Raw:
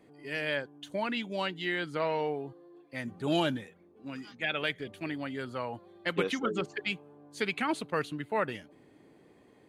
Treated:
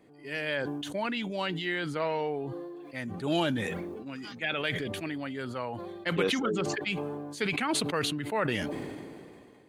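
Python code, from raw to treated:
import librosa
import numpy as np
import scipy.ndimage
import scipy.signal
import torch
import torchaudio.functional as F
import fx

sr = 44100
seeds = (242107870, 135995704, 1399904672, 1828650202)

y = fx.sustainer(x, sr, db_per_s=26.0)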